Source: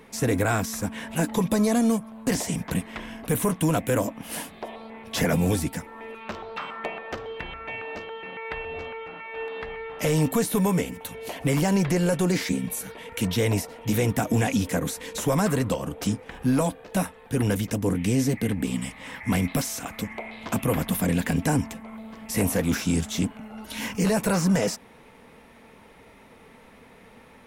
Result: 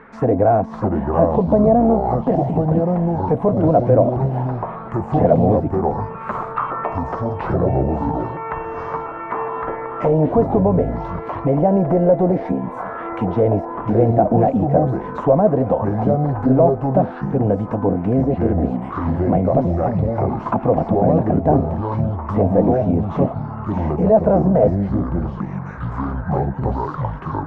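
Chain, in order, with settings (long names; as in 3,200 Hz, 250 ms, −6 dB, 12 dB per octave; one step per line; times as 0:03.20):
delay with pitch and tempo change per echo 539 ms, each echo −5 semitones, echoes 2
envelope-controlled low-pass 660–1,500 Hz down, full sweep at −19 dBFS
level +4 dB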